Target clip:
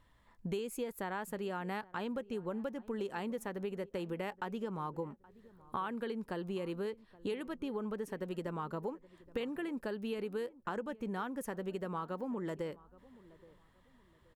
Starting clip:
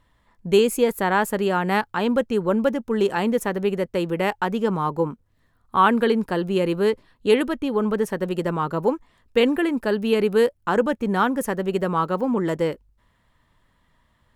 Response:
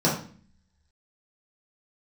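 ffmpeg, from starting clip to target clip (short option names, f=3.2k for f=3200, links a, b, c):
-filter_complex "[0:a]acompressor=threshold=-32dB:ratio=6,asplit=2[a][b];[b]adelay=823,lowpass=f=1.2k:p=1,volume=-20.5dB,asplit=2[c][d];[d]adelay=823,lowpass=f=1.2k:p=1,volume=0.33,asplit=2[e][f];[f]adelay=823,lowpass=f=1.2k:p=1,volume=0.33[g];[c][e][g]amix=inputs=3:normalize=0[h];[a][h]amix=inputs=2:normalize=0,volume=-4.5dB"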